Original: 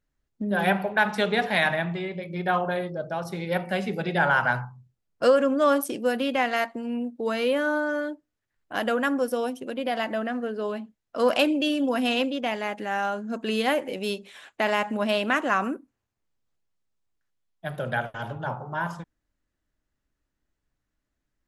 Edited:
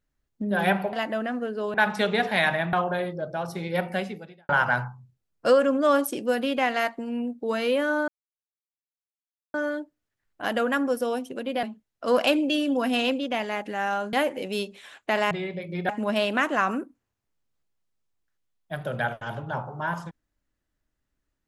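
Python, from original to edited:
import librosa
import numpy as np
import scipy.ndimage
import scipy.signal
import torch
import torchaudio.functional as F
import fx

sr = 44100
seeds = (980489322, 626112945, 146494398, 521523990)

y = fx.edit(x, sr, fx.move(start_s=1.92, length_s=0.58, to_s=14.82),
    fx.fade_out_span(start_s=3.72, length_s=0.54, curve='qua'),
    fx.insert_silence(at_s=7.85, length_s=1.46),
    fx.move(start_s=9.94, length_s=0.81, to_s=0.93),
    fx.cut(start_s=13.25, length_s=0.39), tone=tone)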